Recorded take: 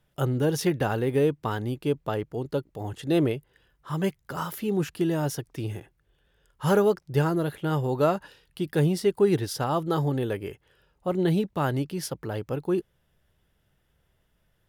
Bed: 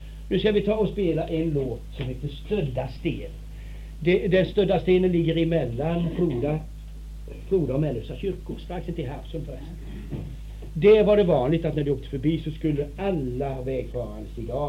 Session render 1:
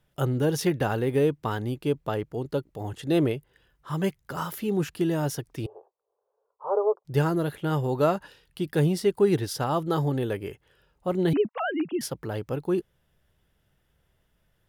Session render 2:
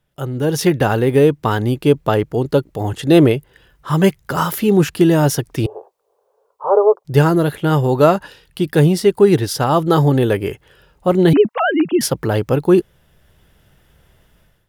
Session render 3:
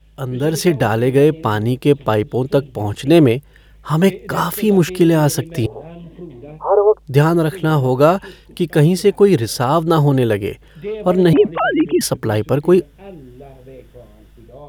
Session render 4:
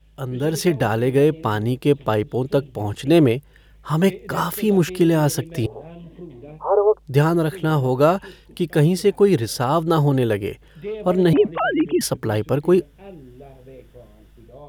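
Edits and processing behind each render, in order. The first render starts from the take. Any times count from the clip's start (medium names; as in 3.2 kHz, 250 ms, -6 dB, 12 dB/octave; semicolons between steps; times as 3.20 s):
5.66–7.05 s: elliptic band-pass 430–1100 Hz; 11.33–12.01 s: formants replaced by sine waves
level rider gain up to 16 dB
add bed -10.5 dB
trim -4 dB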